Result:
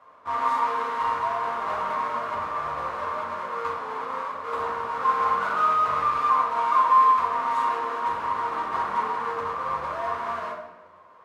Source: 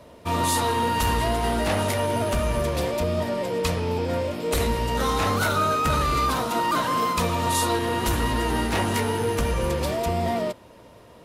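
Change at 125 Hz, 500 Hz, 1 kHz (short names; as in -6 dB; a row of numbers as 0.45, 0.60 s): under -20 dB, -9.0 dB, +3.5 dB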